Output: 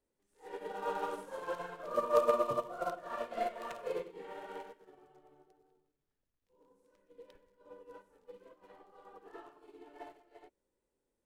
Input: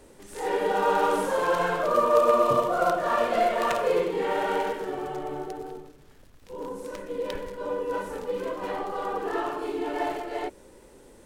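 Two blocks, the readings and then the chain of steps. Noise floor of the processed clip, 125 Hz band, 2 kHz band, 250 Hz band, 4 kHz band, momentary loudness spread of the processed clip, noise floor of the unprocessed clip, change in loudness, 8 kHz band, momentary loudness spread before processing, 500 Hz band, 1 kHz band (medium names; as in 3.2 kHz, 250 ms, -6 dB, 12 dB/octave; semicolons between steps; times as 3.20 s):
-85 dBFS, -16.5 dB, -17.0 dB, -17.0 dB, -16.0 dB, 25 LU, -52 dBFS, -10.0 dB, -16.0 dB, 15 LU, -12.5 dB, -14.0 dB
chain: upward expansion 2.5:1, over -35 dBFS; trim -5.5 dB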